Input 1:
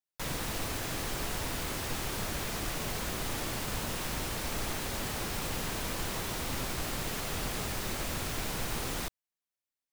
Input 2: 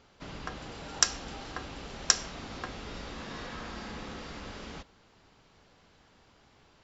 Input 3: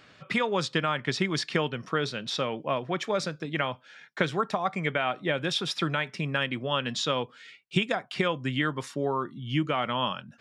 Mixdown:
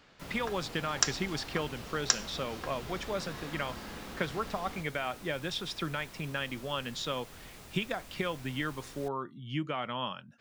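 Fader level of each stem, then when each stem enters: -15.5 dB, -3.0 dB, -7.0 dB; 0.00 s, 0.00 s, 0.00 s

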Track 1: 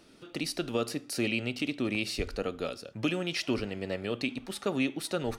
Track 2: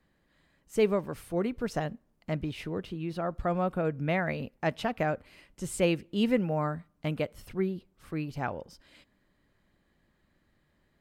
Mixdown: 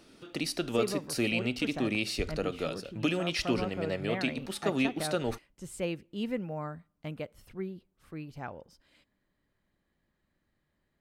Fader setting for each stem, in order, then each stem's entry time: +0.5 dB, -7.5 dB; 0.00 s, 0.00 s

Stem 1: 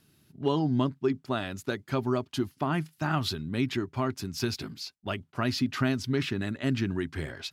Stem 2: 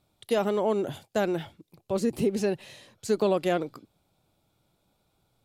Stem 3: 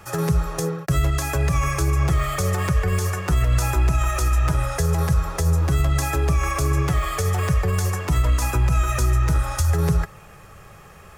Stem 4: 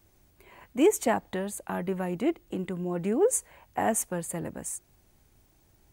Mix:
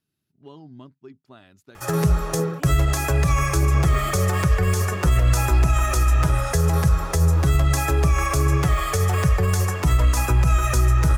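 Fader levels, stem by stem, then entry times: -17.0 dB, -15.5 dB, +1.5 dB, -18.5 dB; 0.00 s, 1.70 s, 1.75 s, 1.80 s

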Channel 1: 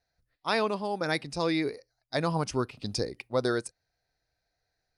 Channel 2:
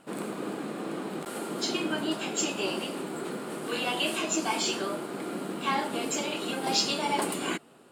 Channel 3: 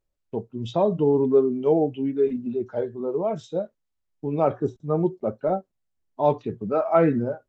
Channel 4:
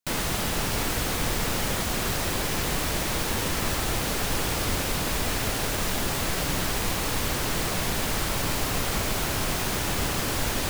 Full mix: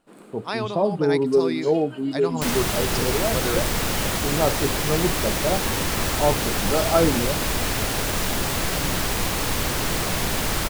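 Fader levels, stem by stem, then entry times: -1.0 dB, -12.0 dB, -0.5 dB, +3.0 dB; 0.00 s, 0.00 s, 0.00 s, 2.35 s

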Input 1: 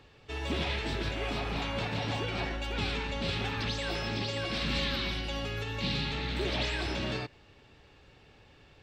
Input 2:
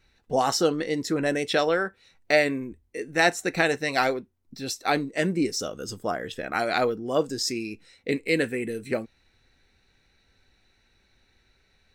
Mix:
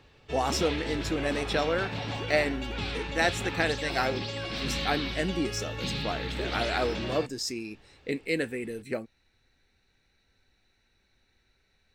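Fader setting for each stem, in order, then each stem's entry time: -1.0 dB, -5.0 dB; 0.00 s, 0.00 s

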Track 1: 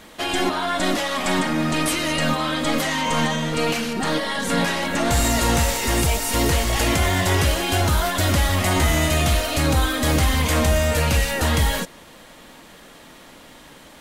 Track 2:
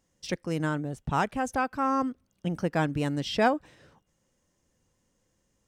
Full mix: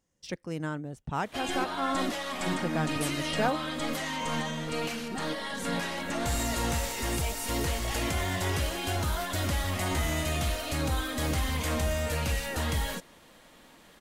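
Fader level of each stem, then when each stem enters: -10.5 dB, -5.0 dB; 1.15 s, 0.00 s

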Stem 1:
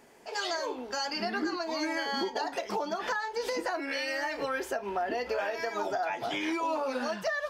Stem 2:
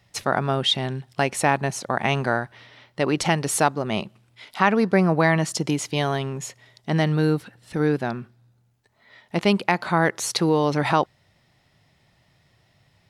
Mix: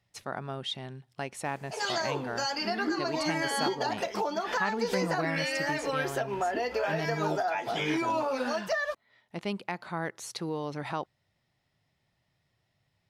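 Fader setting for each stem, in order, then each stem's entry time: +1.5 dB, -14.0 dB; 1.45 s, 0.00 s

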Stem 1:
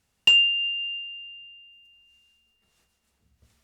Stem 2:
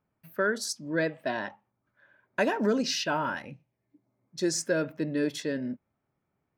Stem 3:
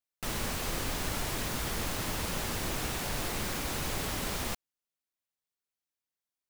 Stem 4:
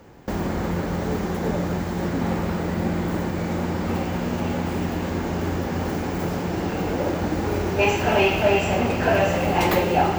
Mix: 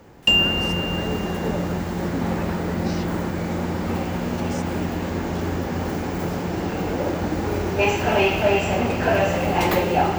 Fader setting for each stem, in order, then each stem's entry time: 0.0 dB, -10.5 dB, -18.0 dB, 0.0 dB; 0.00 s, 0.00 s, 0.00 s, 0.00 s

